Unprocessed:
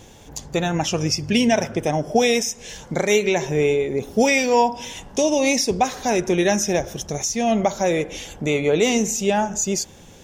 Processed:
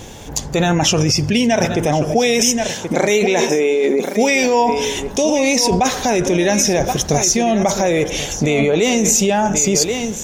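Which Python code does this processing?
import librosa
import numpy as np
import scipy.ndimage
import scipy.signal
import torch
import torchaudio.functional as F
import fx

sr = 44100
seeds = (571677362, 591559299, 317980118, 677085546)

p1 = fx.brickwall_highpass(x, sr, low_hz=170.0, at=(2.7, 4.42))
p2 = p1 + 10.0 ** (-13.5 / 20.0) * np.pad(p1, (int(1079 * sr / 1000.0), 0))[:len(p1)]
p3 = fx.over_compress(p2, sr, threshold_db=-24.0, ratio=-0.5)
p4 = p2 + F.gain(torch.from_numpy(p3), 1.5).numpy()
y = F.gain(torch.from_numpy(p4), 1.0).numpy()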